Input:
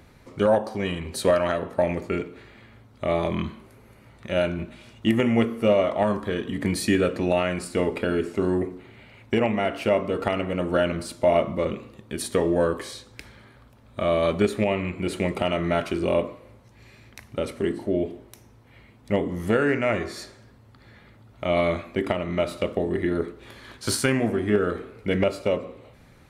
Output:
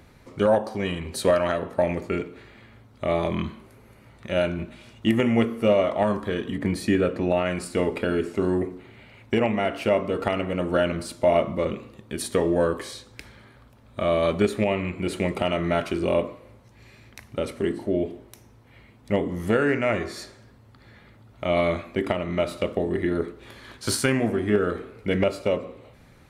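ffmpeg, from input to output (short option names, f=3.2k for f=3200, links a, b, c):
-filter_complex "[0:a]asettb=1/sr,asplit=3[a][b][c];[a]atrim=end=6.564[d];[b]atrim=start=6.56:end=7.46,asetpts=PTS-STARTPTS,afade=t=in:d=0.004:c=qsin,afade=t=out:st=0.896:d=0.004:c=qsin,highshelf=f=2.9k:g=-8.5[e];[c]atrim=start=7.456[f];[d][e]acrossfade=d=0.004:c1=hsin:c2=qsin[g];[g][f]acrossfade=d=0.004:c1=qsin:c2=hsin"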